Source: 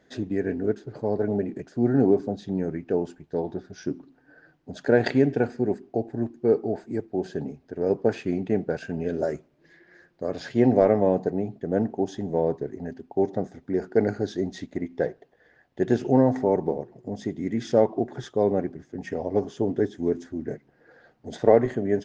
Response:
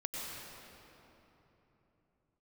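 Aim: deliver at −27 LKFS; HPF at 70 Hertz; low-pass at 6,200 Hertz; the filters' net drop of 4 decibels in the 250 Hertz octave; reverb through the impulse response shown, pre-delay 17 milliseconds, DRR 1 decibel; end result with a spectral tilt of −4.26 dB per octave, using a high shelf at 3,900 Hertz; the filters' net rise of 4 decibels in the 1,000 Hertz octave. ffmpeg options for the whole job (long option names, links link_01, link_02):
-filter_complex "[0:a]highpass=70,lowpass=6200,equalizer=frequency=250:width_type=o:gain=-5.5,equalizer=frequency=1000:width_type=o:gain=6,highshelf=frequency=3900:gain=9,asplit=2[link_01][link_02];[1:a]atrim=start_sample=2205,adelay=17[link_03];[link_02][link_03]afir=irnorm=-1:irlink=0,volume=-3.5dB[link_04];[link_01][link_04]amix=inputs=2:normalize=0,volume=-2.5dB"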